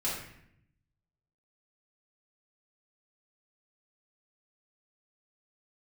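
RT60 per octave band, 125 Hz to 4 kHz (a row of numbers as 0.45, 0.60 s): 1.3, 1.1, 0.75, 0.65, 0.75, 0.55 s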